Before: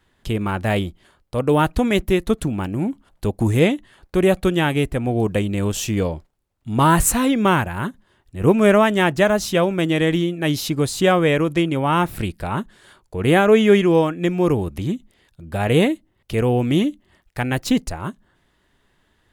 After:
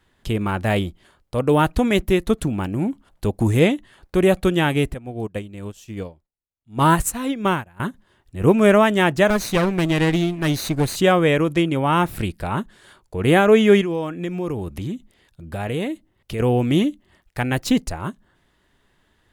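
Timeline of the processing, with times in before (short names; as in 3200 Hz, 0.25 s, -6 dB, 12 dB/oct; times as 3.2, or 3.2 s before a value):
4.94–7.8 upward expander 2.5:1, over -28 dBFS
9.3–10.96 minimum comb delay 0.48 ms
13.81–16.4 compressor 2.5:1, threshold -25 dBFS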